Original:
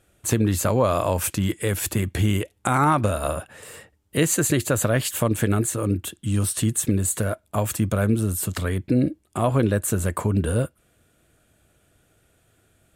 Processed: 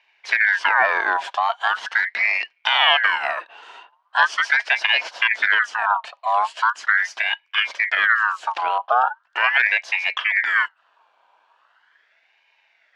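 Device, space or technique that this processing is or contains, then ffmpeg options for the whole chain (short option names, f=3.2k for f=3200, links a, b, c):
voice changer toy: -af "aeval=exprs='val(0)*sin(2*PI*1600*n/s+1600*0.45/0.4*sin(2*PI*0.4*n/s))':c=same,highpass=560,equalizer=f=670:t=q:w=4:g=7,equalizer=f=950:t=q:w=4:g=8,equalizer=f=1.6k:t=q:w=4:g=8,equalizer=f=3k:t=q:w=4:g=8,lowpass=f=4.7k:w=0.5412,lowpass=f=4.7k:w=1.3066"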